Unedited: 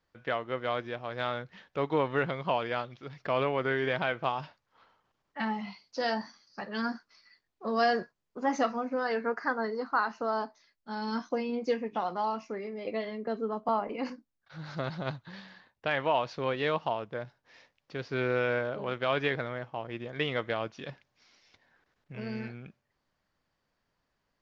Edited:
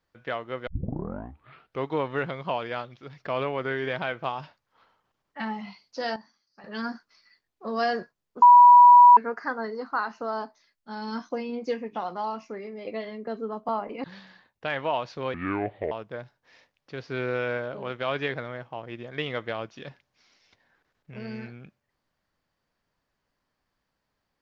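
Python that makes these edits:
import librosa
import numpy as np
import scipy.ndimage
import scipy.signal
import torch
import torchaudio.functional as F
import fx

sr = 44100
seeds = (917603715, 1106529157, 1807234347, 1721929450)

y = fx.edit(x, sr, fx.tape_start(start_s=0.67, length_s=1.2),
    fx.clip_gain(start_s=6.16, length_s=0.48, db=-12.0),
    fx.bleep(start_s=8.42, length_s=0.75, hz=975.0, db=-8.5),
    fx.cut(start_s=14.04, length_s=1.21),
    fx.speed_span(start_s=16.55, length_s=0.38, speed=0.66), tone=tone)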